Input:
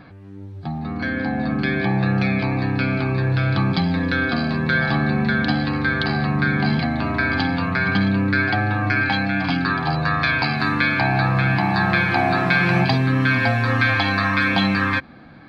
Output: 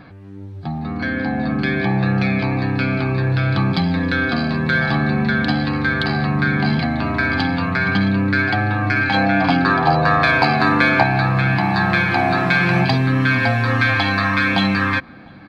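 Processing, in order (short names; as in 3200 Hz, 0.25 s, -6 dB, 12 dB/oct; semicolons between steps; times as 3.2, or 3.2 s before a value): 9.14–11.03 bell 590 Hz +10 dB 1.9 oct; in parallel at -11 dB: soft clip -16.5 dBFS, distortion -13 dB; on the sum: outdoor echo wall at 120 m, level -29 dB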